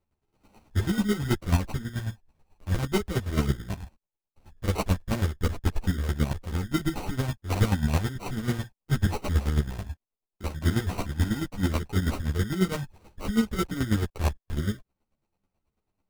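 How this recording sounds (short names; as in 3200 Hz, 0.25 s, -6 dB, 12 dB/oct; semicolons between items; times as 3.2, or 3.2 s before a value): aliases and images of a low sample rate 1700 Hz, jitter 0%; chopped level 9.2 Hz, depth 65%, duty 30%; a shimmering, thickened sound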